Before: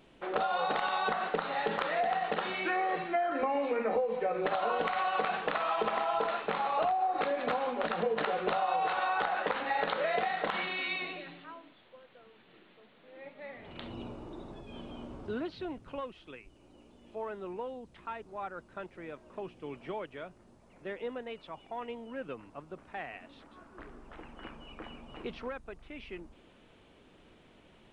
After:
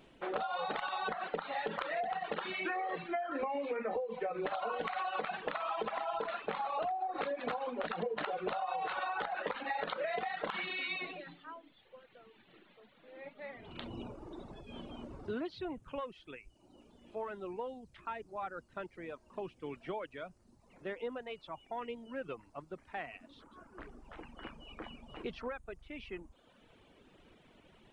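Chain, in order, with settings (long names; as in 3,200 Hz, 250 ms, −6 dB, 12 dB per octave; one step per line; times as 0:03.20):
reverb reduction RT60 1 s
downward compressor 3 to 1, threshold −34 dBFS, peak gain reduction 6.5 dB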